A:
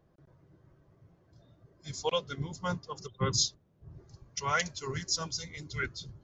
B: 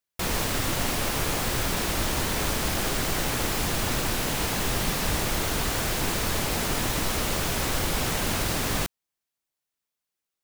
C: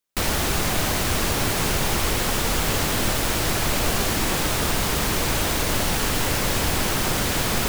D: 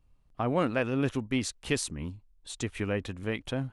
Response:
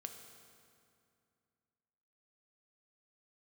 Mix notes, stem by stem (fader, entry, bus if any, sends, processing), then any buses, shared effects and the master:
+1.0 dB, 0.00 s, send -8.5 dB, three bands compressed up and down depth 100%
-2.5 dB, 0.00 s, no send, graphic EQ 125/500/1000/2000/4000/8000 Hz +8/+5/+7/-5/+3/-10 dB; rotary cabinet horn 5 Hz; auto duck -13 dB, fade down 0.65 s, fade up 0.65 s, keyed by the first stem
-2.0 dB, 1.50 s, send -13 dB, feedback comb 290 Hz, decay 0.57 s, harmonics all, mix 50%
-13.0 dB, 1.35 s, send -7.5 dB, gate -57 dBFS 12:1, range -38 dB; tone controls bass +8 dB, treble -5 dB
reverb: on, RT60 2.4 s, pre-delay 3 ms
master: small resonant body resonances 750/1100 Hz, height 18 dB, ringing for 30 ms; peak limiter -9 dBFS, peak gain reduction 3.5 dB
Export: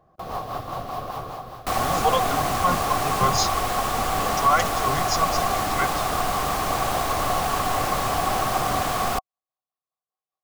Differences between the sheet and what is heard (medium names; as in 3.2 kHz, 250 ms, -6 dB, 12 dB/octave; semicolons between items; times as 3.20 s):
stem A: missing three bands compressed up and down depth 100%; stem B -2.5 dB -> -11.5 dB